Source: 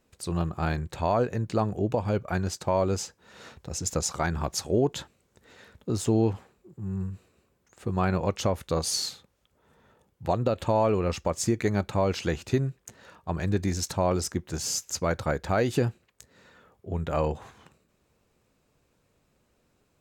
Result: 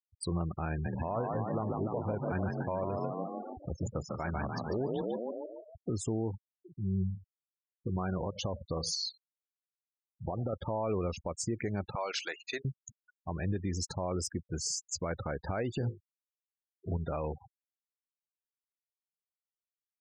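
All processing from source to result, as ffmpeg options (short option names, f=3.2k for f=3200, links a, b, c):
-filter_complex "[0:a]asettb=1/sr,asplit=3[a][b][c];[a]atrim=end=0.704[d];[b]atrim=start=0.7:end=5.91,asetpts=PTS-STARTPTS,afade=t=in:d=0.004:c=qsin,afade=t=out:st=5.206:d=0.004:c=qsin,lowpass=3.1k,asplit=9[e][f][g][h][i][j][k][l][m];[f]adelay=147,afreqshift=40,volume=-4dB[n];[g]adelay=294,afreqshift=80,volume=-8.9dB[o];[h]adelay=441,afreqshift=120,volume=-13.8dB[p];[i]adelay=588,afreqshift=160,volume=-18.6dB[q];[j]adelay=735,afreqshift=200,volume=-23.5dB[r];[k]adelay=882,afreqshift=240,volume=-28.4dB[s];[l]adelay=1029,afreqshift=280,volume=-33.3dB[t];[m]adelay=1176,afreqshift=320,volume=-38.2dB[u];[e][n][o][p][q][r][s][t][u]amix=inputs=9:normalize=0,atrim=end_sample=229761[v];[c]atrim=start=5.906[w];[d][v]acrossfade=d=0.004:c1=hsin:c2=qsin[x];[x][w]acrossfade=d=0.004:c1=qsin:c2=hsin,asettb=1/sr,asplit=3[y][z][aa];[y]atrim=end=7.064[ab];[z]atrim=start=7.06:end=10.53,asetpts=PTS-STARTPTS,afade=t=in:d=0.004:c=qsin,afade=t=out:st=3.466:d=0.004:c=qsin,lowpass=5.8k,acompressor=threshold=-27dB:ratio=16:attack=3.2:release=140:knee=1:detection=peak,asplit=2[ac][ad];[ad]adelay=91,lowpass=f=2k:p=1,volume=-14dB,asplit=2[ae][af];[af]adelay=91,lowpass=f=2k:p=1,volume=0.22[ag];[ac][ae][ag]amix=inputs=3:normalize=0,atrim=end_sample=153027[ah];[aa]atrim=start=10.526[ai];[ab][ah]acrossfade=d=0.004:c1=hsin:c2=qsin[aj];[aj][ai]acrossfade=d=0.004:c1=qsin:c2=hsin,asettb=1/sr,asplit=3[ak][al][am];[ak]atrim=end=11.954[an];[al]atrim=start=11.95:end=12.65,asetpts=PTS-STARTPTS,afade=t=in:d=0.004:c=qsin,afade=t=out:st=0.696:d=0.004:c=qsin,highpass=890,acontrast=70,agate=range=-33dB:threshold=-36dB:ratio=3:release=100:detection=peak[ao];[am]atrim=start=12.646[ap];[an][ao]acrossfade=d=0.004:c1=hsin:c2=qsin[aq];[aq][ap]acrossfade=d=0.004:c1=qsin:c2=hsin,asettb=1/sr,asplit=3[ar][as][at];[ar]atrim=end=15.784[au];[as]atrim=start=15.78:end=16.97,asetpts=PTS-STARTPTS,afade=t=in:d=0.004:c=qsin,afade=t=out:st=1.186:d=0.004:c=qsin,asuperstop=centerf=2500:order=4:qfactor=1.7,bass=f=250:g=5,treble=f=4k:g=3,bandreject=f=50:t=h:w=6,bandreject=f=100:t=h:w=6,bandreject=f=150:t=h:w=6,bandreject=f=200:t=h:w=6,bandreject=f=250:t=h:w=6,bandreject=f=300:t=h:w=6,bandreject=f=350:t=h:w=6,bandreject=f=400:t=h:w=6,bandreject=f=450:t=h:w=6,bandreject=f=500:t=h:w=6[av];[at]atrim=start=16.966[aw];[au][av]acrossfade=d=0.004:c1=hsin:c2=qsin[ax];[ax][aw]acrossfade=d=0.004:c1=qsin:c2=hsin,afftfilt=real='re*gte(hypot(re,im),0.0251)':imag='im*gte(hypot(re,im),0.0251)':win_size=1024:overlap=0.75,alimiter=level_in=0.5dB:limit=-24dB:level=0:latency=1:release=226,volume=-0.5dB"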